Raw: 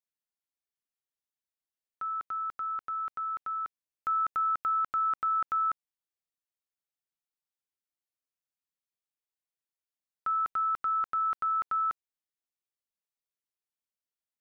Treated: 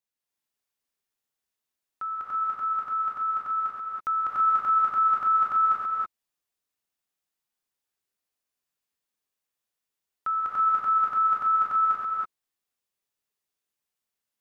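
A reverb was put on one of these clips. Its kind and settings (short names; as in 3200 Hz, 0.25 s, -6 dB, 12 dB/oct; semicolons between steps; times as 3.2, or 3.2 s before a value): non-linear reverb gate 0.35 s rising, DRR -5 dB; gain +1.5 dB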